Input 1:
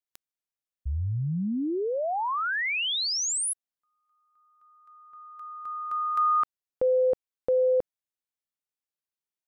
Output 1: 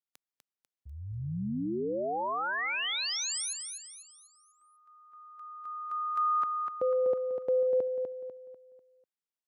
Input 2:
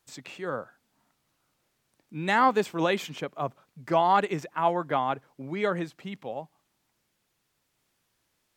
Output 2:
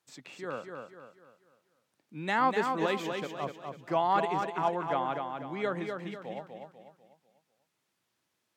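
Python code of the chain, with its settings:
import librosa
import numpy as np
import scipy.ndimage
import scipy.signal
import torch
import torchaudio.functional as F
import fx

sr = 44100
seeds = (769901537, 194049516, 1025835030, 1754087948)

p1 = scipy.signal.sosfilt(scipy.signal.butter(2, 130.0, 'highpass', fs=sr, output='sos'), x)
p2 = fx.high_shelf(p1, sr, hz=9000.0, db=-5.5)
p3 = p2 + fx.echo_feedback(p2, sr, ms=247, feedback_pct=40, wet_db=-5.5, dry=0)
y = p3 * 10.0 ** (-5.0 / 20.0)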